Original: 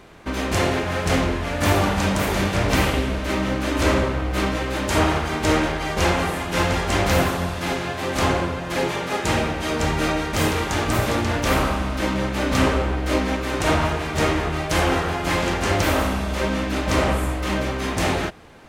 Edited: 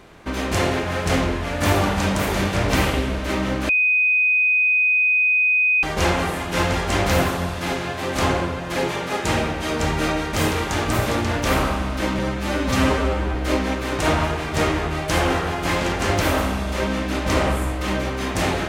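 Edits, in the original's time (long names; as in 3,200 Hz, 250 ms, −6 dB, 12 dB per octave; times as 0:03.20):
0:03.69–0:05.83: beep over 2,500 Hz −14.5 dBFS
0:12.19–0:12.96: time-stretch 1.5×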